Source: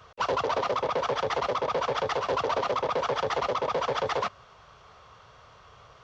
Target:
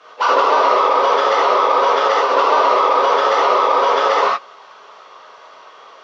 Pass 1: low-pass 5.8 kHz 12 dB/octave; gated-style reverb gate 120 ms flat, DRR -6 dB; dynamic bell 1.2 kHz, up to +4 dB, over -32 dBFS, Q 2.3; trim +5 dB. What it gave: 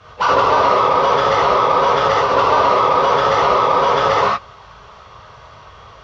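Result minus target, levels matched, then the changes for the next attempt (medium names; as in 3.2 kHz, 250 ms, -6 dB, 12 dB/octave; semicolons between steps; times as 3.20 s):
250 Hz band +3.5 dB
add after dynamic bell: high-pass 300 Hz 24 dB/octave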